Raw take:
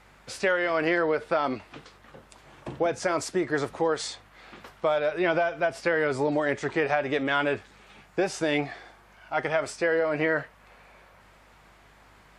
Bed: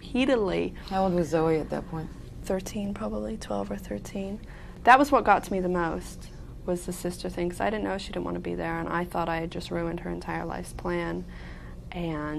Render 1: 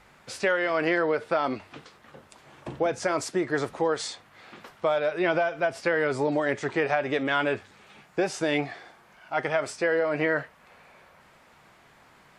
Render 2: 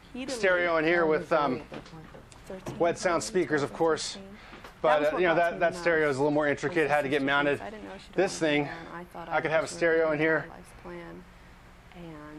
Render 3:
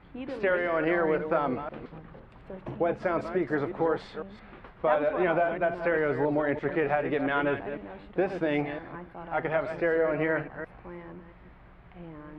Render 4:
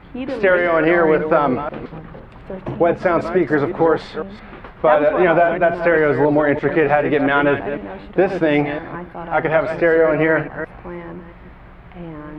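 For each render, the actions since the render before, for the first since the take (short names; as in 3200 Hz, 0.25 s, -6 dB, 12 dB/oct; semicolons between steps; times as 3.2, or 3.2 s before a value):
de-hum 50 Hz, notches 2
add bed -12.5 dB
reverse delay 0.169 s, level -9 dB; air absorption 470 m
gain +11.5 dB; limiter -2 dBFS, peak gain reduction 1 dB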